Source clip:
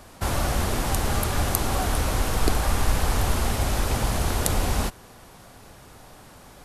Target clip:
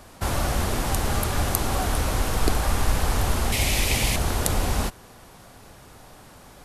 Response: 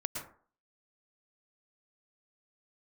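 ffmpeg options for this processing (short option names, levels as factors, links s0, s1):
-filter_complex "[0:a]asettb=1/sr,asplit=3[s0][s1][s2];[s0]atrim=end=3.524[s3];[s1]atrim=start=3.52:end=4.16,asetpts=PTS-STARTPTS,afade=t=in:d=0.004:c=qsin,afade=t=out:st=0.636:d=0.004:c=qsin,highshelf=f=1800:t=q:w=3:g=6.5[s4];[s2]atrim=start=4.156[s5];[s3][s4]acrossfade=d=0.004:c1=hsin:c2=qsin[s6];[s6][s5]acrossfade=d=0.004:c1=qsin:c2=hsin"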